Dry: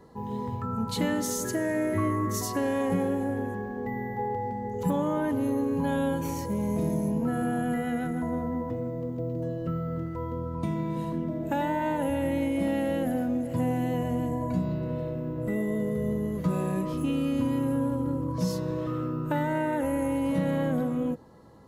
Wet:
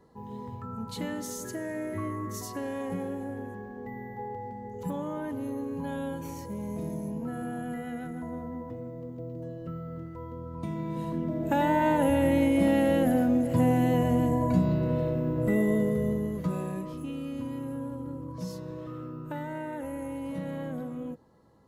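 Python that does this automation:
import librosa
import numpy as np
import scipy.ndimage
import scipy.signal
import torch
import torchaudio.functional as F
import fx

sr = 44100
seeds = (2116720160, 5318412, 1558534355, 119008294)

y = fx.gain(x, sr, db=fx.line((10.38, -7.0), (11.76, 4.0), (15.71, 4.0), (17.05, -8.5)))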